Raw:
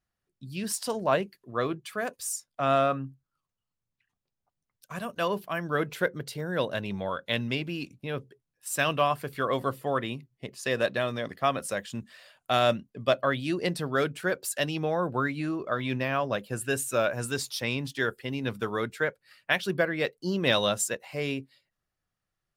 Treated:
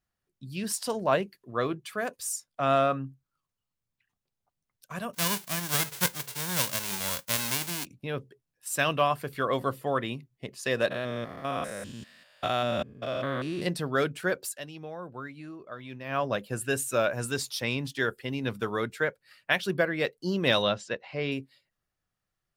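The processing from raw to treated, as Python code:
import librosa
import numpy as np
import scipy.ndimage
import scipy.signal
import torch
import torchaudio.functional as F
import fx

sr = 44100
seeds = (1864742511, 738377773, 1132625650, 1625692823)

y = fx.envelope_flatten(x, sr, power=0.1, at=(5.13, 7.84), fade=0.02)
y = fx.spec_steps(y, sr, hold_ms=200, at=(10.9, 13.65), fade=0.02)
y = fx.lowpass(y, sr, hz=4600.0, slope=24, at=(20.62, 21.32))
y = fx.edit(y, sr, fx.fade_down_up(start_s=14.43, length_s=1.76, db=-12.0, fade_s=0.15), tone=tone)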